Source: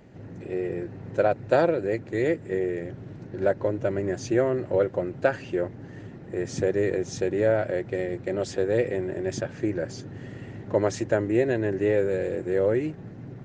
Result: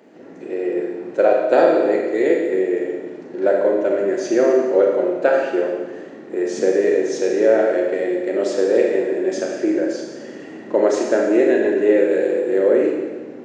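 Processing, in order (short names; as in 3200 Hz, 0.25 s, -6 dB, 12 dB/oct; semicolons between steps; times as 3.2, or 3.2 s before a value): HPF 280 Hz 24 dB/oct; low shelf 440 Hz +7 dB; Schroeder reverb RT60 1.3 s, combs from 28 ms, DRR -0.5 dB; gain +2.5 dB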